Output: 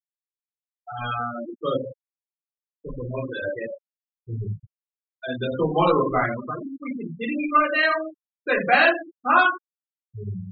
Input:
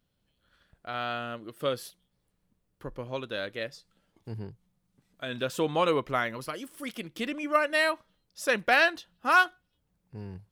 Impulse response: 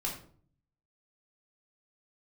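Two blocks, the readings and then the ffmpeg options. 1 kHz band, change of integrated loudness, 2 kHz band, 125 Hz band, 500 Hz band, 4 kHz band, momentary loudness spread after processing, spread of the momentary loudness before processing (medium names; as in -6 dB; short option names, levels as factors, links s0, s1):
+7.0 dB, +5.5 dB, +4.5 dB, +9.5 dB, +5.0 dB, +1.0 dB, 18 LU, 20 LU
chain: -filter_complex "[0:a]asplit=2[s0][s1];[s1]asoftclip=type=tanh:threshold=0.0422,volume=0.355[s2];[s0][s2]amix=inputs=2:normalize=0,bandreject=f=146.4:t=h:w=4,bandreject=f=292.8:t=h:w=4,bandreject=f=439.2:t=h:w=4[s3];[1:a]atrim=start_sample=2205,afade=t=out:st=0.29:d=0.01,atrim=end_sample=13230[s4];[s3][s4]afir=irnorm=-1:irlink=0,afftfilt=real='re*gte(hypot(re,im),0.0794)':imag='im*gte(hypot(re,im),0.0794)':win_size=1024:overlap=0.75,volume=1.26"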